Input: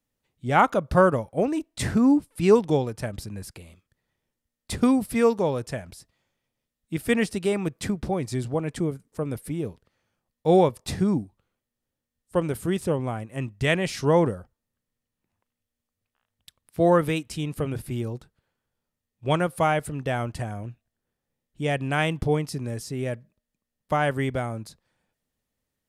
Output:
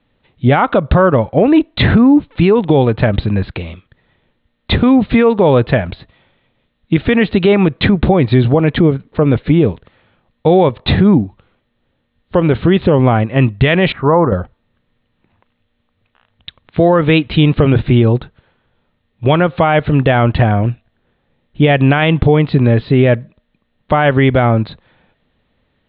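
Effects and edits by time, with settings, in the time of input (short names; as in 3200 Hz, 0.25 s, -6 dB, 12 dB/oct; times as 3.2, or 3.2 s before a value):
13.92–14.32 ladder low-pass 1400 Hz, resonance 55%
whole clip: steep low-pass 4000 Hz 96 dB/oct; compressor 4:1, threshold -25 dBFS; maximiser +22 dB; gain -1 dB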